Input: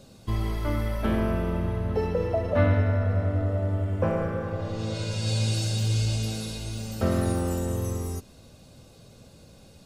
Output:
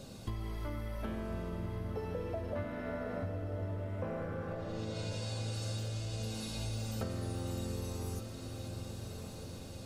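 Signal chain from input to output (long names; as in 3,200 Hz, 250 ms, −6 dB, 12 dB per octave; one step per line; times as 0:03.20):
0:02.64–0:03.23: Butterworth high-pass 200 Hz
downward compressor 10 to 1, threshold −38 dBFS, peak gain reduction 21.5 dB
on a send: feedback delay with all-pass diffusion 1,207 ms, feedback 55%, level −7.5 dB
on the sum: level +2 dB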